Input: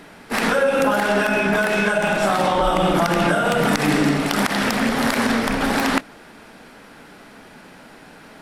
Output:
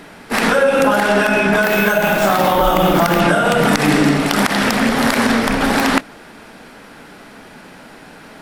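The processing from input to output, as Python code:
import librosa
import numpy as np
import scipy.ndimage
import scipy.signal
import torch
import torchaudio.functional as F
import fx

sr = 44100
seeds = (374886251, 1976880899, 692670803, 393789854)

y = fx.resample_bad(x, sr, factor=3, down='none', up='hold', at=(1.63, 3.2))
y = y * librosa.db_to_amplitude(4.5)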